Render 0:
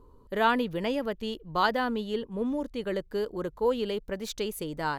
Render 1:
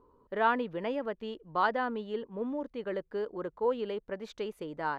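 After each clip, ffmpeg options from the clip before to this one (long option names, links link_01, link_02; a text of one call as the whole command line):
ffmpeg -i in.wav -af "lowpass=1700,aemphasis=mode=production:type=bsi,volume=-1.5dB" out.wav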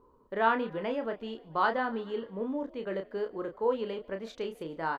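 ffmpeg -i in.wav -filter_complex "[0:a]asplit=2[link_01][link_02];[link_02]adelay=31,volume=-6.5dB[link_03];[link_01][link_03]amix=inputs=2:normalize=0,asplit=5[link_04][link_05][link_06][link_07][link_08];[link_05]adelay=145,afreqshift=47,volume=-24dB[link_09];[link_06]adelay=290,afreqshift=94,volume=-28dB[link_10];[link_07]adelay=435,afreqshift=141,volume=-32dB[link_11];[link_08]adelay=580,afreqshift=188,volume=-36dB[link_12];[link_04][link_09][link_10][link_11][link_12]amix=inputs=5:normalize=0" out.wav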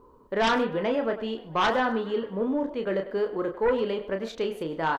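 ffmpeg -i in.wav -filter_complex "[0:a]asplit=2[link_01][link_02];[link_02]adelay=100,highpass=300,lowpass=3400,asoftclip=type=hard:threshold=-22dB,volume=-13dB[link_03];[link_01][link_03]amix=inputs=2:normalize=0,aeval=exprs='0.266*sin(PI/2*3.16*val(0)/0.266)':channel_layout=same,volume=-6.5dB" out.wav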